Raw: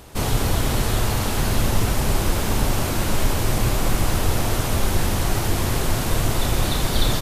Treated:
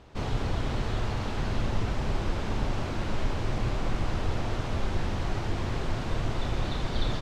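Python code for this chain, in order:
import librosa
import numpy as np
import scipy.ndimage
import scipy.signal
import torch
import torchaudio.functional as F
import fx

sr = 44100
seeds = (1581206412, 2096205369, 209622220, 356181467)

y = fx.air_absorb(x, sr, metres=150.0)
y = y * librosa.db_to_amplitude(-8.0)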